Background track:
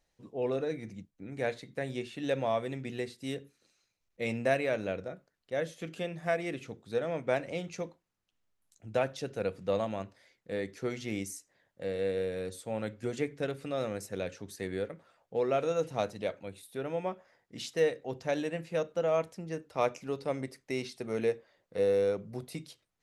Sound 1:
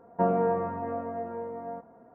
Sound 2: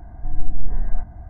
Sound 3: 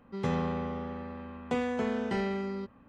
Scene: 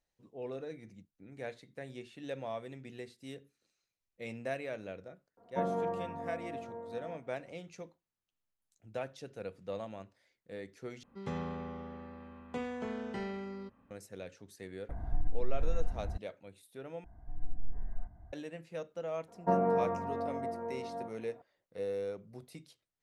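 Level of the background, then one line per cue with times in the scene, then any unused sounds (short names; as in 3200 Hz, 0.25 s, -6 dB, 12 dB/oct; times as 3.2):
background track -9.5 dB
5.37 add 1 -8.5 dB
11.03 replace with 3 -8 dB
14.89 add 2 -1 dB + compressor 5:1, threshold -22 dBFS
17.04 replace with 2 -16.5 dB
19.28 add 1 -3.5 dB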